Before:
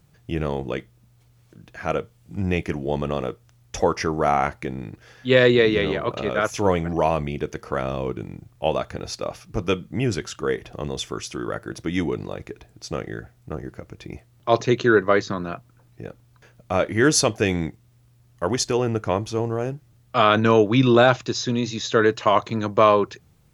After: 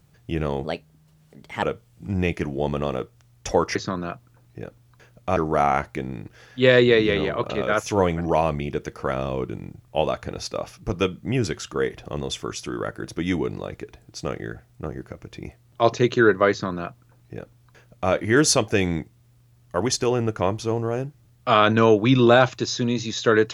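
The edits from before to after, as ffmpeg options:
-filter_complex "[0:a]asplit=5[s0][s1][s2][s3][s4];[s0]atrim=end=0.644[s5];[s1]atrim=start=0.64:end=1.91,asetpts=PTS-STARTPTS,asetrate=56889,aresample=44100,atrim=end_sample=43416,asetpts=PTS-STARTPTS[s6];[s2]atrim=start=1.906:end=4.042[s7];[s3]atrim=start=15.178:end=16.792[s8];[s4]atrim=start=4.038[s9];[s5][s6]acrossfade=d=0.004:c1=hsin:c2=hsin[s10];[s10][s7]acrossfade=d=0.004:c1=hsin:c2=hsin[s11];[s11][s8]acrossfade=d=0.004:c1=hsin:c2=hsin[s12];[s12][s9]acrossfade=d=0.004:c1=hsin:c2=hsin"

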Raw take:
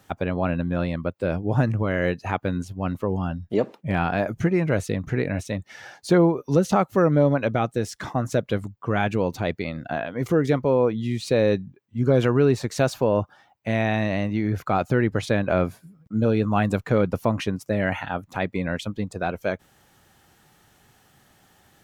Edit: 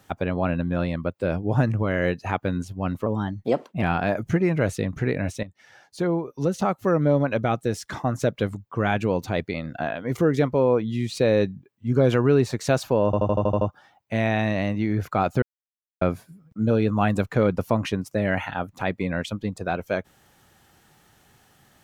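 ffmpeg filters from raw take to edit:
-filter_complex "[0:a]asplit=13[s0][s1][s2][s3][s4][s5][s6][s7][s8][s9][s10][s11][s12];[s0]atrim=end=3.064[s13];[s1]atrim=start=3.06:end=3.93,asetpts=PTS-STARTPTS,asetrate=50274,aresample=44100,atrim=end_sample=33655,asetpts=PTS-STARTPTS[s14];[s2]atrim=start=3.926:end=5.54,asetpts=PTS-STARTPTS,afade=t=out:st=1.61:d=0.004:c=hsin:silence=0.211349[s15];[s3]atrim=start=5.54:end=13.242,asetpts=PTS-STARTPTS,afade=t=in:d=2.11:silence=0.211349[s16];[s4]atrim=start=13.158:end=13.242[s17];[s5]atrim=start=13.158:end=13.242[s18];[s6]atrim=start=13.158:end=13.242[s19];[s7]atrim=start=13.158:end=13.242[s20];[s8]atrim=start=13.158:end=13.242[s21];[s9]atrim=start=13.158:end=13.242[s22];[s10]atrim=start=13.158:end=14.97,asetpts=PTS-STARTPTS,afade=t=out:st=1.808:d=0.004:c=hsin[s23];[s11]atrim=start=14.97:end=15.56,asetpts=PTS-STARTPTS,volume=0[s24];[s12]atrim=start=15.56,asetpts=PTS-STARTPTS,afade=t=in:d=0.004:c=hsin[s25];[s13][s14]acrossfade=d=0.004:c1=hsin:c2=hsin[s26];[s15][s16]concat=n=2:v=0:a=1[s27];[s26][s27]acrossfade=d=0.004:c1=hsin:c2=hsin[s28];[s28][s17]acrossfade=d=0.004:c1=hsin:c2=hsin[s29];[s29][s18]acrossfade=d=0.004:c1=hsin:c2=hsin[s30];[s30][s19]acrossfade=d=0.004:c1=hsin:c2=hsin[s31];[s31][s20]acrossfade=d=0.004:c1=hsin:c2=hsin[s32];[s32][s21]acrossfade=d=0.004:c1=hsin:c2=hsin[s33];[s33][s22]acrossfade=d=0.004:c1=hsin:c2=hsin[s34];[s23][s24][s25]concat=n=3:v=0:a=1[s35];[s34][s35]acrossfade=d=0.004:c1=hsin:c2=hsin"

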